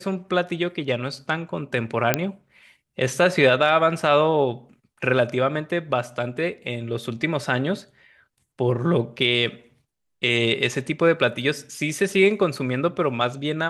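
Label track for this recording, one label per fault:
2.140000	2.140000	pop -2 dBFS

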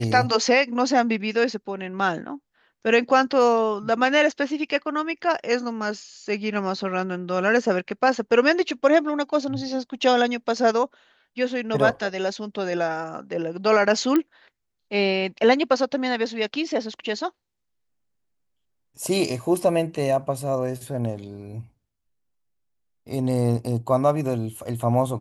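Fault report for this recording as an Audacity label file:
14.160000	14.160000	pop -10 dBFS

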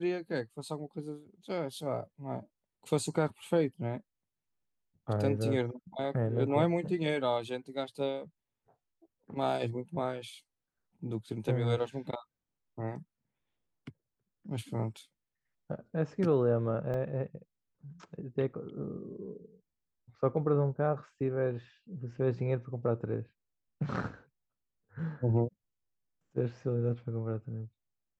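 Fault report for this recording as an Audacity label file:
16.940000	16.940000	dropout 2.2 ms

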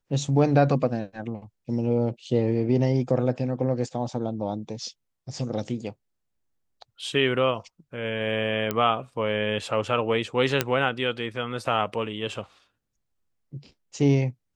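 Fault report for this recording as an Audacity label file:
8.710000	8.710000	pop -11 dBFS
10.610000	10.610000	pop -5 dBFS

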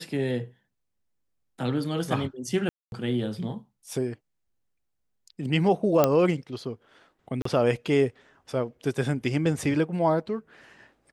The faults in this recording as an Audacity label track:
2.690000	2.920000	dropout 231 ms
6.040000	6.040000	pop -6 dBFS
7.420000	7.450000	dropout 34 ms

